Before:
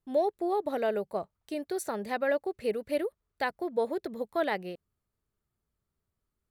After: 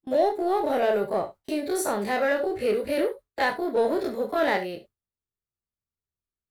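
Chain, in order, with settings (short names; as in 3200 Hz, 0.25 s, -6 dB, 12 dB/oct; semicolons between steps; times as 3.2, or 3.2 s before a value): spectral dilation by 60 ms; in parallel at -6 dB: hard clip -27.5 dBFS, distortion -8 dB; on the sum: non-linear reverb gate 90 ms flat, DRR 8 dB; gate with hold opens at -32 dBFS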